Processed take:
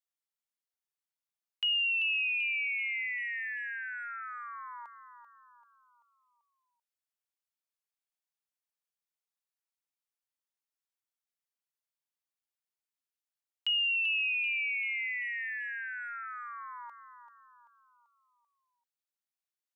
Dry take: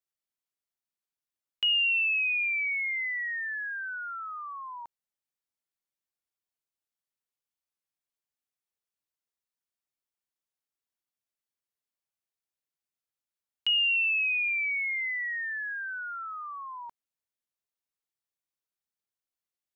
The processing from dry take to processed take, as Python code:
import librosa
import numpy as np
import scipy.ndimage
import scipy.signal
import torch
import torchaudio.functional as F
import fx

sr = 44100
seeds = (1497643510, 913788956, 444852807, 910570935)

p1 = scipy.signal.sosfilt(scipy.signal.butter(2, 650.0, 'highpass', fs=sr, output='sos'), x)
p2 = p1 + fx.echo_feedback(p1, sr, ms=388, feedback_pct=45, wet_db=-10.0, dry=0)
y = p2 * 10.0 ** (-4.0 / 20.0)